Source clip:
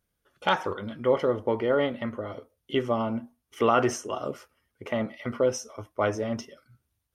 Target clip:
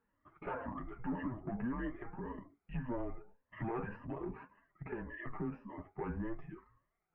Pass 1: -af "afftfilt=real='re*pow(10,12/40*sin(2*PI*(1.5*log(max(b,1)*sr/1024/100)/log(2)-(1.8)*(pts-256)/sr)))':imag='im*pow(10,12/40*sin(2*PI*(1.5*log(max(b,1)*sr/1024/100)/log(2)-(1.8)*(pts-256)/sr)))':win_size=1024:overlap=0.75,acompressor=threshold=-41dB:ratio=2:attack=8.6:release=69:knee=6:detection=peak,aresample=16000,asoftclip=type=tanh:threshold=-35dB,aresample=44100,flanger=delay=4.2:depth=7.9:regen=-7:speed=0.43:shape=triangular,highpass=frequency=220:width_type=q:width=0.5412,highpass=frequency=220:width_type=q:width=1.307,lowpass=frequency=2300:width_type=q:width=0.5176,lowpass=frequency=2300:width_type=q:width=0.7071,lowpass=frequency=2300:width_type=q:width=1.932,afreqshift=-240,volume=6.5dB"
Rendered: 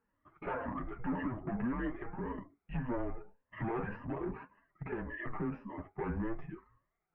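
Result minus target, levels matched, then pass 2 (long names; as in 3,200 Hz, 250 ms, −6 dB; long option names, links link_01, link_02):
downward compressor: peak gain reduction −6 dB
-af "afftfilt=real='re*pow(10,12/40*sin(2*PI*(1.5*log(max(b,1)*sr/1024/100)/log(2)-(1.8)*(pts-256)/sr)))':imag='im*pow(10,12/40*sin(2*PI*(1.5*log(max(b,1)*sr/1024/100)/log(2)-(1.8)*(pts-256)/sr)))':win_size=1024:overlap=0.75,acompressor=threshold=-52.5dB:ratio=2:attack=8.6:release=69:knee=6:detection=peak,aresample=16000,asoftclip=type=tanh:threshold=-35dB,aresample=44100,flanger=delay=4.2:depth=7.9:regen=-7:speed=0.43:shape=triangular,highpass=frequency=220:width_type=q:width=0.5412,highpass=frequency=220:width_type=q:width=1.307,lowpass=frequency=2300:width_type=q:width=0.5176,lowpass=frequency=2300:width_type=q:width=0.7071,lowpass=frequency=2300:width_type=q:width=1.932,afreqshift=-240,volume=6.5dB"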